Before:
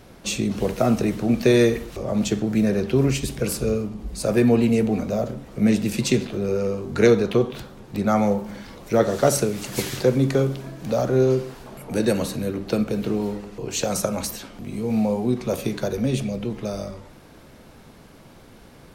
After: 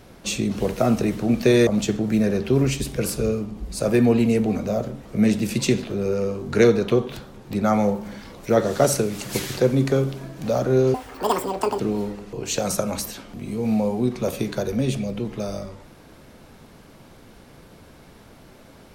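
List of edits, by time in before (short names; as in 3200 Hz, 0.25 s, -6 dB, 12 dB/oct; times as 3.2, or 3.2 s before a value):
1.67–2.1 cut
11.37–13.05 speed 196%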